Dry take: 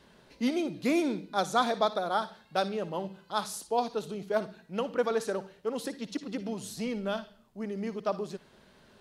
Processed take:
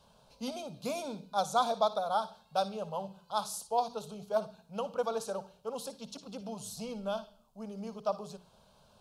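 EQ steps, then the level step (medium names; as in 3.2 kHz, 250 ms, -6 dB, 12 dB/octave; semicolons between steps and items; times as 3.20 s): hum notches 60/120/180/240/300/360/420 Hz; static phaser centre 790 Hz, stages 4; 0.0 dB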